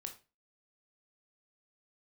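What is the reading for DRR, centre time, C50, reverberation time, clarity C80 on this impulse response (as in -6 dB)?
4.5 dB, 11 ms, 11.0 dB, 0.30 s, 18.0 dB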